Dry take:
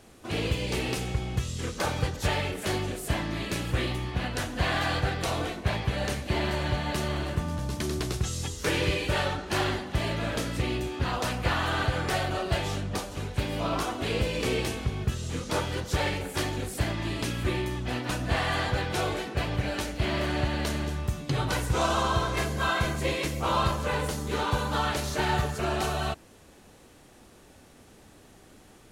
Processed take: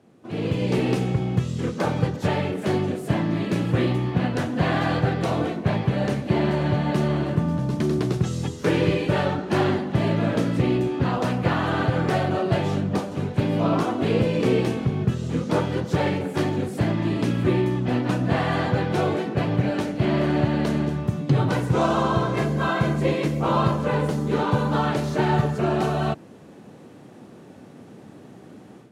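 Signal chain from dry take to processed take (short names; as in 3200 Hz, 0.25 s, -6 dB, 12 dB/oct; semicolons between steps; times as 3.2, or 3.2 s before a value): HPF 140 Hz 24 dB/oct; tilt -3.5 dB/oct; AGC gain up to 11.5 dB; gain -6 dB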